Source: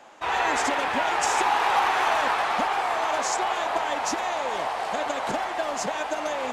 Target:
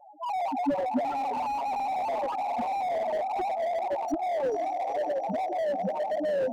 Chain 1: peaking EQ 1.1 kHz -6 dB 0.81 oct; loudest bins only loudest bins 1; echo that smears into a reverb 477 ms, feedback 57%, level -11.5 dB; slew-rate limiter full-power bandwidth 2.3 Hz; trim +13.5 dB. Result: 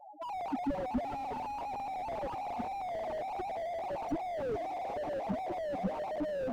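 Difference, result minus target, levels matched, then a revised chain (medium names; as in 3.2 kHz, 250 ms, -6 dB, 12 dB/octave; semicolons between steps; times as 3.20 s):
slew-rate limiter: distortion +10 dB
peaking EQ 1.1 kHz -6 dB 0.81 oct; loudest bins only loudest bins 1; echo that smears into a reverb 477 ms, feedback 57%, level -11.5 dB; slew-rate limiter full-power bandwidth 6.5 Hz; trim +13.5 dB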